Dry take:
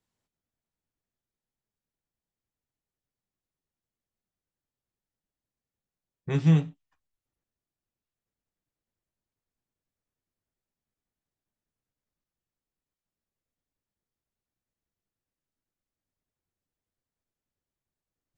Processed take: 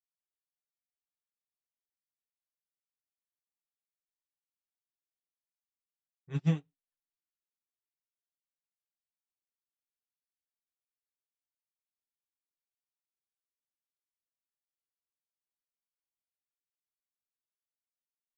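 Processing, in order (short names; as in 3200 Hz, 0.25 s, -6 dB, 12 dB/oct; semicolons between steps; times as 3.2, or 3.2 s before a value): flange 1.2 Hz, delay 1.9 ms, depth 6 ms, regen +27%; upward expander 2.5:1, over -41 dBFS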